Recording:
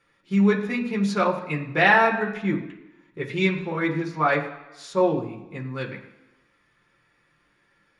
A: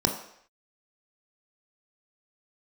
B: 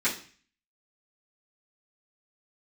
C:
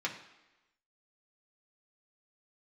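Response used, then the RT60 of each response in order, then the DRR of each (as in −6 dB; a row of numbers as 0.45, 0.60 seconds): C; non-exponential decay, 0.40 s, 1.0 s; 2.5, −12.0, −2.5 decibels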